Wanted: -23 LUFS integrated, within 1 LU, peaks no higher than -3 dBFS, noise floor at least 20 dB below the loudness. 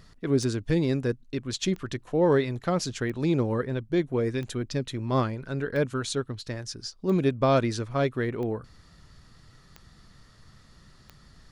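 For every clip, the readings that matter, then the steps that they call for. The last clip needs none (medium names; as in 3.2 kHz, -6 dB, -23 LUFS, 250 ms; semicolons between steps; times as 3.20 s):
clicks found 9; loudness -27.5 LUFS; peak level -12.5 dBFS; loudness target -23.0 LUFS
-> de-click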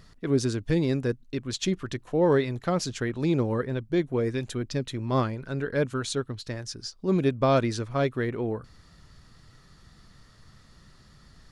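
clicks found 0; loudness -27.5 LUFS; peak level -12.5 dBFS; loudness target -23.0 LUFS
-> trim +4.5 dB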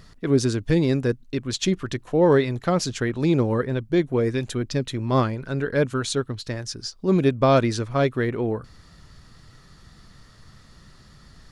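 loudness -23.0 LUFS; peak level -8.0 dBFS; noise floor -51 dBFS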